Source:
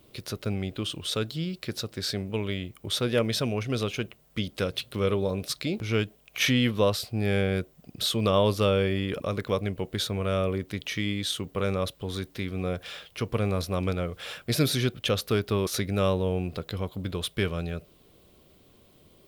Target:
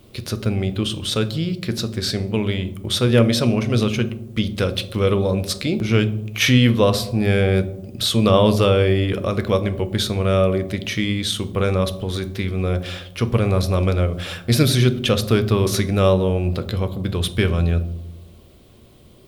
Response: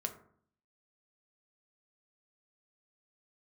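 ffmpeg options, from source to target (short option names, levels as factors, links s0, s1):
-filter_complex "[0:a]asplit=2[s0][s1];[1:a]atrim=start_sample=2205,asetrate=23814,aresample=44100,lowshelf=f=160:g=7.5[s2];[s1][s2]afir=irnorm=-1:irlink=0,volume=0.891[s3];[s0][s3]amix=inputs=2:normalize=0"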